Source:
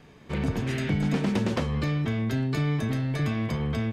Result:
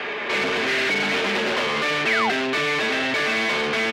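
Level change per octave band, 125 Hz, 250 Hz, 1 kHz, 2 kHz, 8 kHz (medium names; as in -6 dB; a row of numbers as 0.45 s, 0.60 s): -15.0 dB, -2.5 dB, +13.0 dB, +17.0 dB, +10.5 dB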